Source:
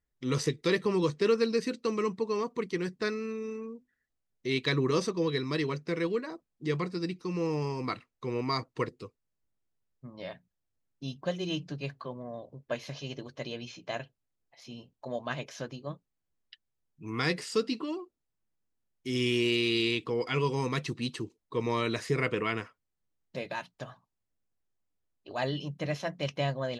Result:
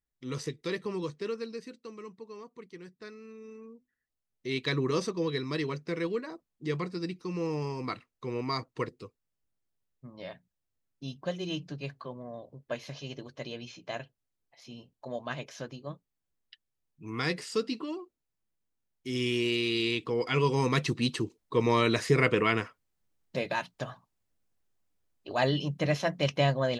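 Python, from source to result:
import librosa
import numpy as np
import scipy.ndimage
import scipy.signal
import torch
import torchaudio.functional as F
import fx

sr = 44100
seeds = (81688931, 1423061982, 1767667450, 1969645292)

y = fx.gain(x, sr, db=fx.line((0.95, -6.5), (1.93, -14.5), (3.08, -14.5), (3.68, -7.5), (4.73, -1.5), (19.76, -1.5), (20.82, 5.0)))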